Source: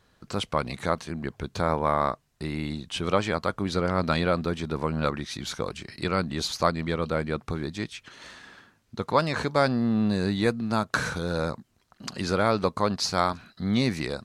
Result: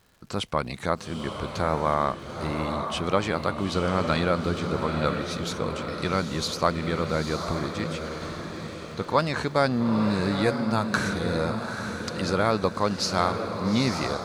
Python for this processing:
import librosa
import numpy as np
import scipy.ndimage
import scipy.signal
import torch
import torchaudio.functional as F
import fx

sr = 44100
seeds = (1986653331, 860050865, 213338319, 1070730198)

y = fx.echo_diffused(x, sr, ms=870, feedback_pct=47, wet_db=-6)
y = fx.dmg_crackle(y, sr, seeds[0], per_s=200.0, level_db=-48.0)